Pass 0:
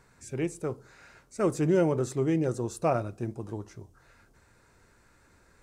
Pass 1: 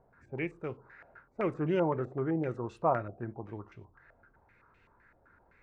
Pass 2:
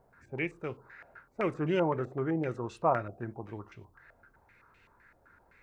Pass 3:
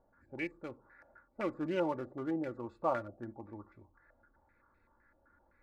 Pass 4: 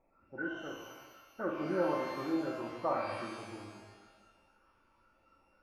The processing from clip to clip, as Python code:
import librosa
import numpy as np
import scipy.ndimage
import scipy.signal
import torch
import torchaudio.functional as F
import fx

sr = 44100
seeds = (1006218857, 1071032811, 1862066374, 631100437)

y1 = fx.filter_held_lowpass(x, sr, hz=7.8, low_hz=690.0, high_hz=2700.0)
y1 = y1 * 10.0 ** (-6.0 / 20.0)
y2 = fx.high_shelf(y1, sr, hz=2300.0, db=9.0)
y3 = fx.wiener(y2, sr, points=15)
y3 = y3 + 0.58 * np.pad(y3, (int(3.5 * sr / 1000.0), 0))[:len(y3)]
y3 = y3 * 10.0 ** (-6.0 / 20.0)
y4 = fx.freq_compress(y3, sr, knee_hz=1300.0, ratio=4.0)
y4 = fx.peak_eq(y4, sr, hz=70.0, db=-5.0, octaves=1.8)
y4 = fx.rev_shimmer(y4, sr, seeds[0], rt60_s=1.3, semitones=12, shimmer_db=-8, drr_db=0.0)
y4 = y4 * 10.0 ** (-2.0 / 20.0)